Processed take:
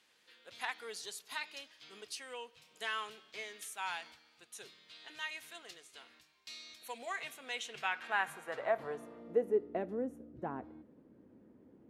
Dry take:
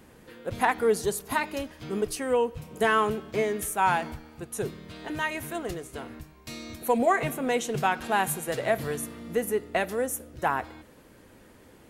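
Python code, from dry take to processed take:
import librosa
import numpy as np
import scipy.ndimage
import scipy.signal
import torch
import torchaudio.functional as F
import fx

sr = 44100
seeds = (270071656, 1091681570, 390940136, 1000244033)

y = fx.filter_sweep_bandpass(x, sr, from_hz=3900.0, to_hz=250.0, start_s=7.41, end_s=9.99, q=1.4)
y = y * 10.0 ** (-3.0 / 20.0)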